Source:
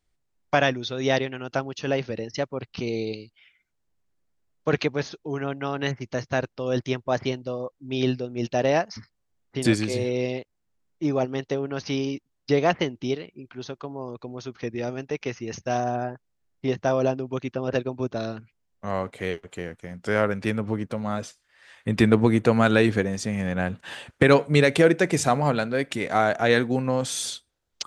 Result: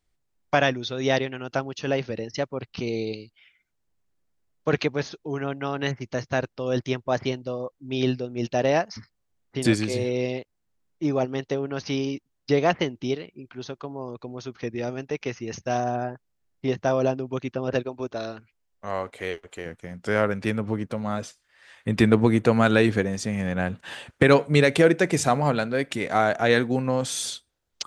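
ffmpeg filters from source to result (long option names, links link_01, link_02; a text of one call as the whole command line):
ffmpeg -i in.wav -filter_complex "[0:a]asettb=1/sr,asplit=3[link_01][link_02][link_03];[link_01]atrim=end=17.834[link_04];[link_02]atrim=start=17.83:end=19.66,asetpts=PTS-STARTPTS,afade=type=in:duration=0.004:curve=qsin,afade=type=out:start_time=1.826:duration=0.004:curve=qsin,equalizer=frequency=150:width_type=o:width=1.5:gain=-10[link_05];[link_03]atrim=start=19.656[link_06];[link_04][link_05]acrossfade=duration=0.004:curve1=hsin:curve2=qsin[link_07];[link_07][link_06]acrossfade=duration=0.004:curve1=qsin:curve2=hsin" out.wav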